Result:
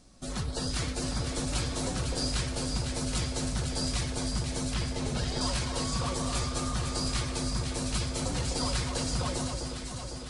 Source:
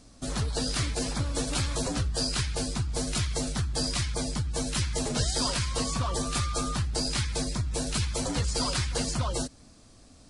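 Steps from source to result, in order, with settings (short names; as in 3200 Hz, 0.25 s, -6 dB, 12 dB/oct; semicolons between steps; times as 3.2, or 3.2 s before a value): 4.74–5.41 LPF 4300 Hz; on a send: echo with dull and thin repeats by turns 0.252 s, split 1300 Hz, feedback 80%, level -4 dB; on the sum: shoebox room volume 3400 m³, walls furnished, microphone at 1 m; gain -4 dB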